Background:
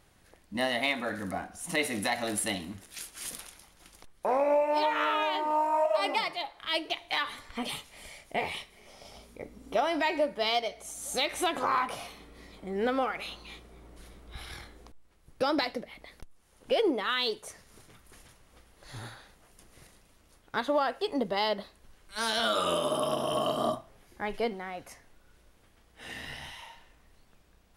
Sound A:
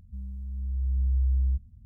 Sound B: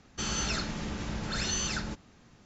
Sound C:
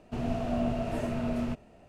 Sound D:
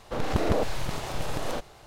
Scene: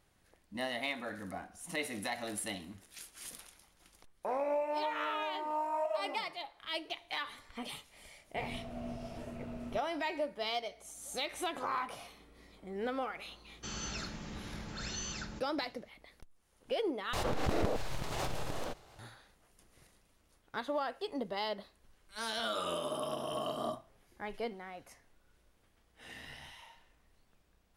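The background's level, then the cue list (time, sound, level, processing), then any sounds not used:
background -8 dB
8.24 s: add C -13 dB
13.45 s: add B -9 dB
17.13 s: replace with D -8.5 dB + swell ahead of each attack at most 21 dB/s
not used: A

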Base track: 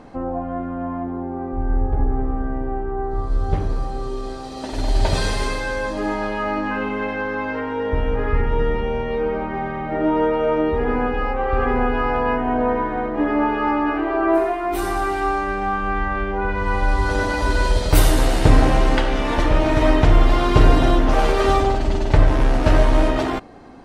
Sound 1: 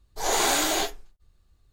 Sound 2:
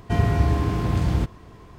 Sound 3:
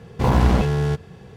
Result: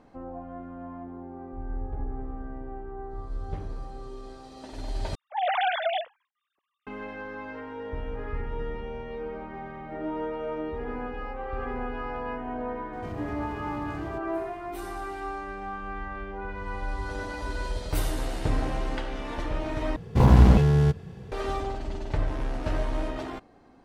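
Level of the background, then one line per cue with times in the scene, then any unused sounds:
base track -13.5 dB
5.15 s: replace with 1 -2.5 dB + formants replaced by sine waves
12.93 s: add 2 -6 dB + compression 2:1, threshold -39 dBFS
19.96 s: replace with 3 -4.5 dB + bass shelf 320 Hz +7 dB

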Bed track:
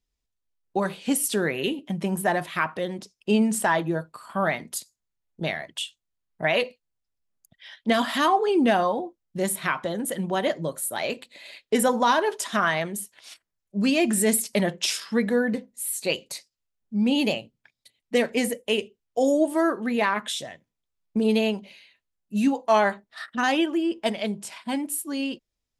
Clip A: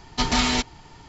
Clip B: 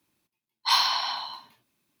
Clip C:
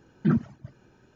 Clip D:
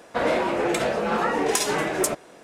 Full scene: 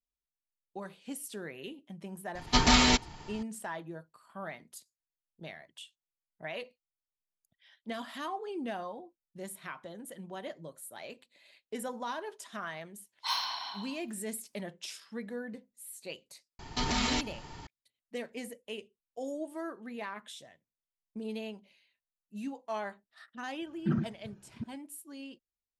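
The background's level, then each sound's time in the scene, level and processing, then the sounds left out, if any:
bed track -17 dB
2.35 s: add A -1 dB
12.58 s: add B -10.5 dB
16.59 s: add A + peak limiter -21 dBFS
23.61 s: add C -7.5 dB + chunks repeated in reverse 343 ms, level -6 dB
not used: D

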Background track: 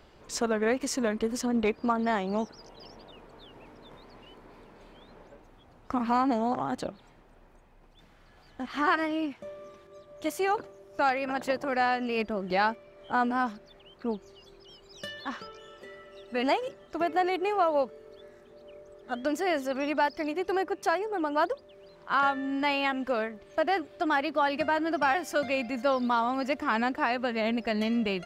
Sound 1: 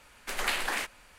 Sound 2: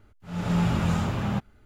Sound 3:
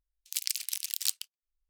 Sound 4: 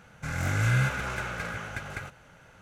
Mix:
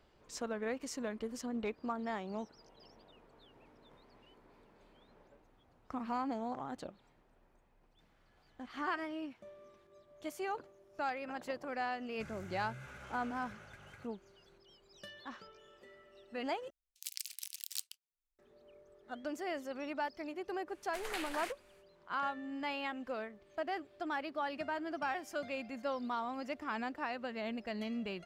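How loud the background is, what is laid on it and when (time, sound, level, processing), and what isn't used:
background track -11.5 dB
11.97 s: add 4 -17 dB + peak limiter -25 dBFS
16.70 s: replace with 3 -11 dB
20.66 s: add 1 -12 dB, fades 0.05 s
not used: 2

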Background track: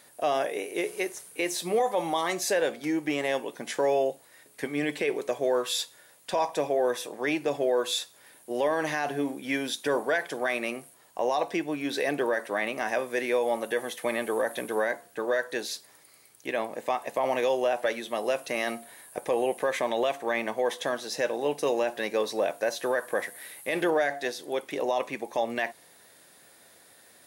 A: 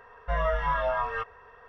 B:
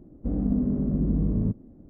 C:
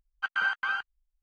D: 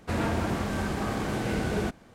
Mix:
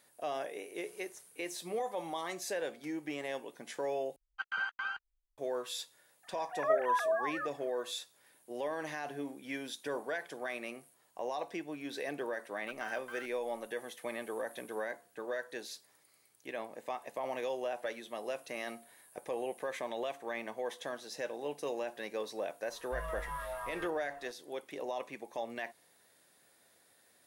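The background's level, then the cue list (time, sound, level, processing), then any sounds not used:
background track -11 dB
4.16 s: replace with C -8 dB
6.23 s: add A -5 dB + formants replaced by sine waves
12.45 s: add C -17 dB + send-on-delta sampling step -42.5 dBFS
22.64 s: add A -14.5 dB + companding laws mixed up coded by mu
not used: B, D

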